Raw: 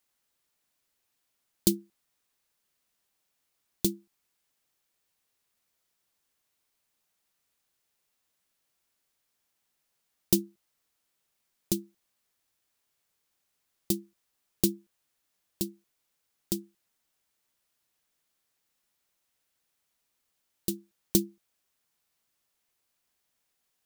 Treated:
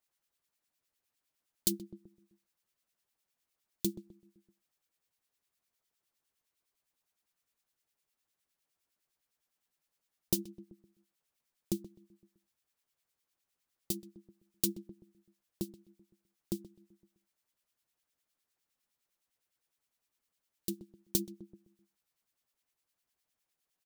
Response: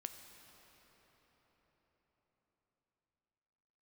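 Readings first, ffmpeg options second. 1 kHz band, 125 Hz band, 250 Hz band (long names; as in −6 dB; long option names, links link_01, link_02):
−7.0 dB, −7.0 dB, −7.5 dB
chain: -filter_complex "[0:a]asplit=2[link_01][link_02];[link_02]adelay=128,lowpass=frequency=1100:poles=1,volume=-14dB,asplit=2[link_03][link_04];[link_04]adelay=128,lowpass=frequency=1100:poles=1,volume=0.5,asplit=2[link_05][link_06];[link_06]adelay=128,lowpass=frequency=1100:poles=1,volume=0.5,asplit=2[link_07][link_08];[link_08]adelay=128,lowpass=frequency=1100:poles=1,volume=0.5,asplit=2[link_09][link_10];[link_10]adelay=128,lowpass=frequency=1100:poles=1,volume=0.5[link_11];[link_01][link_03][link_05][link_07][link_09][link_11]amix=inputs=6:normalize=0,acrossover=split=1700[link_12][link_13];[link_12]aeval=exprs='val(0)*(1-0.7/2+0.7/2*cos(2*PI*9.8*n/s))':channel_layout=same[link_14];[link_13]aeval=exprs='val(0)*(1-0.7/2-0.7/2*cos(2*PI*9.8*n/s))':channel_layout=same[link_15];[link_14][link_15]amix=inputs=2:normalize=0,volume=-3dB"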